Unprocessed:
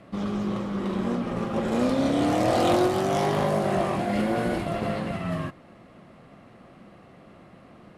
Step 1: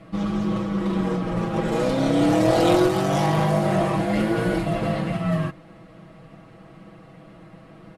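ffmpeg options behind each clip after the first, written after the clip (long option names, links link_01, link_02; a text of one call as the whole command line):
ffmpeg -i in.wav -af "lowshelf=frequency=110:gain=7,aecho=1:1:6.2:0.96" out.wav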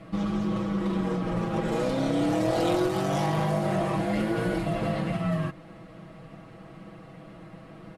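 ffmpeg -i in.wav -af "acompressor=threshold=-27dB:ratio=2" out.wav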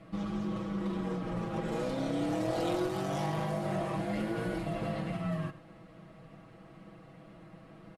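ffmpeg -i in.wav -af "aecho=1:1:101:0.158,volume=-7dB" out.wav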